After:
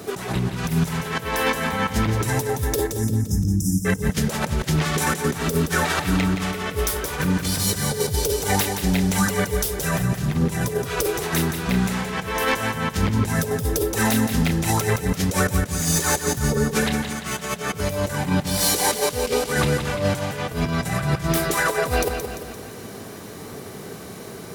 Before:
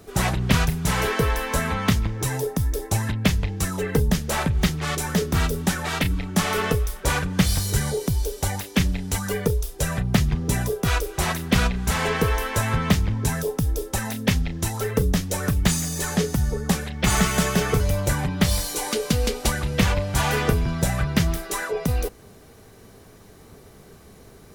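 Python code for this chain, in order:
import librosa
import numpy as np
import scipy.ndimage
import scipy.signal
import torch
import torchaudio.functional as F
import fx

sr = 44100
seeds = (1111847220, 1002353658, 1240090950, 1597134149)

p1 = scipy.signal.sosfilt(scipy.signal.butter(2, 130.0, 'highpass', fs=sr, output='sos'), x)
p2 = fx.over_compress(p1, sr, threshold_db=-30.0, ratio=-0.5)
p3 = 10.0 ** (-19.0 / 20.0) * (np.abs((p2 / 10.0 ** (-19.0 / 20.0) + 3.0) % 4.0 - 2.0) - 1.0)
p4 = fx.brickwall_bandstop(p3, sr, low_hz=340.0, high_hz=5000.0, at=(2.87, 3.85))
p5 = p4 + fx.echo_feedback(p4, sr, ms=172, feedback_pct=51, wet_db=-7.5, dry=0)
y = F.gain(torch.from_numpy(p5), 7.0).numpy()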